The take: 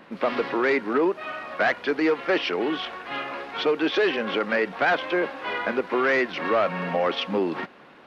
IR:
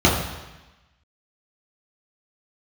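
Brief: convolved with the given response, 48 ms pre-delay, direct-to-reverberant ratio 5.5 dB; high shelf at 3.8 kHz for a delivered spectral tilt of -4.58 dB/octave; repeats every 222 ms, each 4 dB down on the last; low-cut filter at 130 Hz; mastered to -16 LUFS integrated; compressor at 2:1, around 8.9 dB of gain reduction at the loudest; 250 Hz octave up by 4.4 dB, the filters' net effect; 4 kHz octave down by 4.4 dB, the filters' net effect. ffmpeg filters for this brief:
-filter_complex "[0:a]highpass=130,equalizer=f=250:t=o:g=6.5,highshelf=f=3800:g=-5.5,equalizer=f=4000:t=o:g=-3,acompressor=threshold=0.0224:ratio=2,aecho=1:1:222|444|666|888|1110|1332|1554|1776|1998:0.631|0.398|0.25|0.158|0.0994|0.0626|0.0394|0.0249|0.0157,asplit=2[s0][s1];[1:a]atrim=start_sample=2205,adelay=48[s2];[s1][s2]afir=irnorm=-1:irlink=0,volume=0.0422[s3];[s0][s3]amix=inputs=2:normalize=0,volume=3.35"

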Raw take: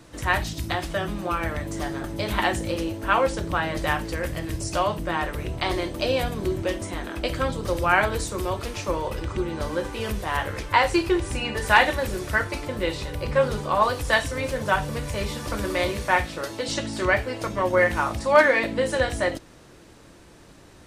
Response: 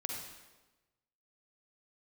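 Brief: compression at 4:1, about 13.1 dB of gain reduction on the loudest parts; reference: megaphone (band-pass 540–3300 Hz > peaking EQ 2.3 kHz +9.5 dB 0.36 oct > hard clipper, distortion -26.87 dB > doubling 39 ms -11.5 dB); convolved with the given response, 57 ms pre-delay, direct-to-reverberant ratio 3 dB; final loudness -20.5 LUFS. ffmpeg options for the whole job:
-filter_complex "[0:a]acompressor=threshold=0.0447:ratio=4,asplit=2[s0][s1];[1:a]atrim=start_sample=2205,adelay=57[s2];[s1][s2]afir=irnorm=-1:irlink=0,volume=0.631[s3];[s0][s3]amix=inputs=2:normalize=0,highpass=540,lowpass=3300,equalizer=f=2300:t=o:w=0.36:g=9.5,asoftclip=type=hard:threshold=0.133,asplit=2[s4][s5];[s5]adelay=39,volume=0.266[s6];[s4][s6]amix=inputs=2:normalize=0,volume=2.99"

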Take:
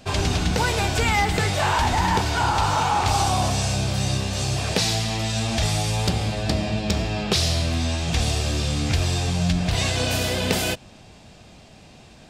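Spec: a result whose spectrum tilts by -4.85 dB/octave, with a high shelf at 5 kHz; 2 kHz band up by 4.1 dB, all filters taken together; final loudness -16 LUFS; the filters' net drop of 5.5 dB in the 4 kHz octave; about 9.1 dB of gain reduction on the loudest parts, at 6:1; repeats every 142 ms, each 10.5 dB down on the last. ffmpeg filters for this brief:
-af "equalizer=f=2000:t=o:g=8,equalizer=f=4000:t=o:g=-8.5,highshelf=f=5000:g=-3,acompressor=threshold=0.0501:ratio=6,aecho=1:1:142|284|426:0.299|0.0896|0.0269,volume=4.47"

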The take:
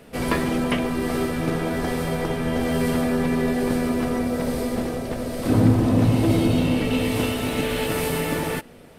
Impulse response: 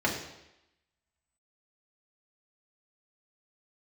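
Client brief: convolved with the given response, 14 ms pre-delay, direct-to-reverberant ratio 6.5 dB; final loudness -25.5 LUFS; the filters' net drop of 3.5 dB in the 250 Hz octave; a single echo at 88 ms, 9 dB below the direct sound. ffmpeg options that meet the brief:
-filter_complex "[0:a]equalizer=f=250:t=o:g=-4,aecho=1:1:88:0.355,asplit=2[s0][s1];[1:a]atrim=start_sample=2205,adelay=14[s2];[s1][s2]afir=irnorm=-1:irlink=0,volume=0.126[s3];[s0][s3]amix=inputs=2:normalize=0,volume=0.75"

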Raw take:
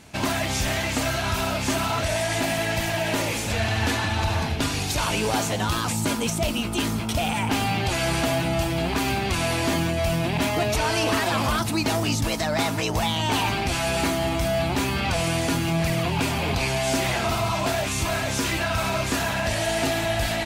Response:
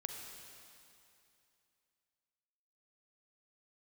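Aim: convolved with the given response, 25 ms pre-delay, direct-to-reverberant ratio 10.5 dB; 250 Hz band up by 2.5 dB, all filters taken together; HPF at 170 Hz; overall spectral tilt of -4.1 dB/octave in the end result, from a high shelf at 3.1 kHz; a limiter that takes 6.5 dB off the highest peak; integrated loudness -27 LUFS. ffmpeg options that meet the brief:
-filter_complex "[0:a]highpass=170,equalizer=f=250:t=o:g=4.5,highshelf=f=3100:g=-3,alimiter=limit=0.141:level=0:latency=1,asplit=2[s0][s1];[1:a]atrim=start_sample=2205,adelay=25[s2];[s1][s2]afir=irnorm=-1:irlink=0,volume=0.335[s3];[s0][s3]amix=inputs=2:normalize=0,volume=0.891"

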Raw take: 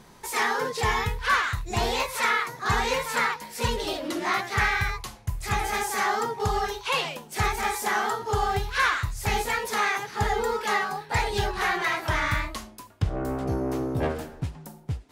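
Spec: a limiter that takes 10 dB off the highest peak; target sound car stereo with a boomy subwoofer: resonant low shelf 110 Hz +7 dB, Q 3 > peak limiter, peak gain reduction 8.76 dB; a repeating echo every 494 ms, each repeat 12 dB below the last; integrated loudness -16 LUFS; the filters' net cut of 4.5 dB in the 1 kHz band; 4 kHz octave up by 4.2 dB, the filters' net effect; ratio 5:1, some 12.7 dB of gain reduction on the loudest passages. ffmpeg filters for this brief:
-af "equalizer=f=1000:t=o:g=-6,equalizer=f=4000:t=o:g=5.5,acompressor=threshold=0.02:ratio=5,alimiter=level_in=2.51:limit=0.0631:level=0:latency=1,volume=0.398,lowshelf=f=110:t=q:w=3:g=7,aecho=1:1:494|988|1482:0.251|0.0628|0.0157,volume=15,alimiter=limit=0.473:level=0:latency=1"

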